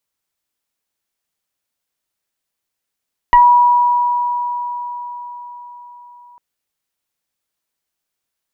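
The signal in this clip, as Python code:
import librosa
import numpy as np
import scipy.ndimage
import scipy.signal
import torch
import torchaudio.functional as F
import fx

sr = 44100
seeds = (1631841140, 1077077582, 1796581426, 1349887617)

y = fx.fm2(sr, length_s=3.05, level_db=-4, carrier_hz=970.0, ratio=0.98, index=0.72, index_s=0.18, decay_s=4.94, shape='exponential')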